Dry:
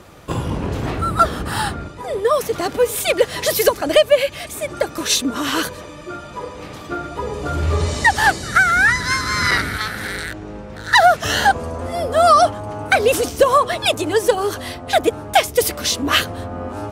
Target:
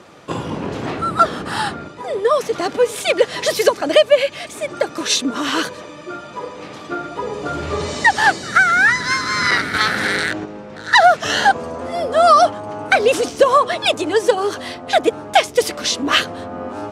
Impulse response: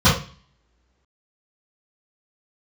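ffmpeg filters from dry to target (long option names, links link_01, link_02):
-filter_complex "[0:a]asplit=3[link_01][link_02][link_03];[link_01]afade=type=out:start_time=9.73:duration=0.02[link_04];[link_02]acontrast=85,afade=type=in:start_time=9.73:duration=0.02,afade=type=out:start_time=10.44:duration=0.02[link_05];[link_03]afade=type=in:start_time=10.44:duration=0.02[link_06];[link_04][link_05][link_06]amix=inputs=3:normalize=0,highpass=170,lowpass=7300,volume=1dB"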